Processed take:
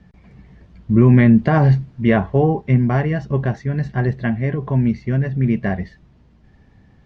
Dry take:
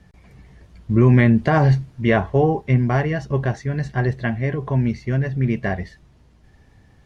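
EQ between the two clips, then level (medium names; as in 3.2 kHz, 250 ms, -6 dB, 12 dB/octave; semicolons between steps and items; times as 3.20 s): distance through air 110 m; peaking EQ 200 Hz +6 dB 0.85 oct; 0.0 dB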